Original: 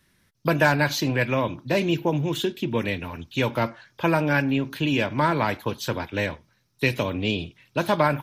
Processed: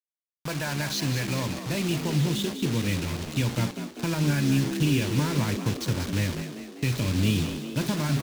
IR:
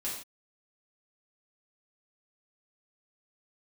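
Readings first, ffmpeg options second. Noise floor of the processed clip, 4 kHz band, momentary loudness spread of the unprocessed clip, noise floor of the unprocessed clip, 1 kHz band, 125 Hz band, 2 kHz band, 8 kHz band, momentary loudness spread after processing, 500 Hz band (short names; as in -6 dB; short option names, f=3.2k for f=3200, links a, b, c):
under -85 dBFS, -0.5 dB, 9 LU, -66 dBFS, -11.0 dB, +2.5 dB, -8.0 dB, +5.5 dB, 6 LU, -9.0 dB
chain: -filter_complex "[0:a]bandreject=f=81.56:t=h:w=4,bandreject=f=163.12:t=h:w=4,bandreject=f=244.68:t=h:w=4,bandreject=f=326.24:t=h:w=4,bandreject=f=407.8:t=h:w=4,alimiter=limit=-14.5dB:level=0:latency=1:release=110,asubboost=boost=7:cutoff=230,acrusher=bits=4:mix=0:aa=0.000001,equalizer=f=5k:w=0.63:g=6,asplit=7[a][b][c][d][e][f][g];[b]adelay=197,afreqshift=60,volume=-9.5dB[h];[c]adelay=394,afreqshift=120,volume=-14.7dB[i];[d]adelay=591,afreqshift=180,volume=-19.9dB[j];[e]adelay=788,afreqshift=240,volume=-25.1dB[k];[f]adelay=985,afreqshift=300,volume=-30.3dB[l];[g]adelay=1182,afreqshift=360,volume=-35.5dB[m];[a][h][i][j][k][l][m]amix=inputs=7:normalize=0,volume=-7.5dB"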